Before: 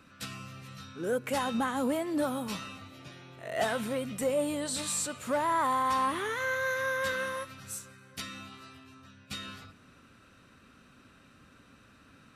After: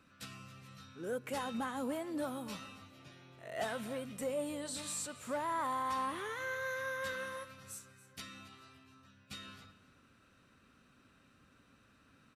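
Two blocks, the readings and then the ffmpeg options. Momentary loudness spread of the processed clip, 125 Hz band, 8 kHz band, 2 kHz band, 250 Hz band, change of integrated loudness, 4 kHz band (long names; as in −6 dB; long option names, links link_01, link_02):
18 LU, −8.0 dB, −8.0 dB, −8.0 dB, −8.0 dB, −8.0 dB, −8.0 dB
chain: -af "aecho=1:1:276:0.126,volume=-8dB"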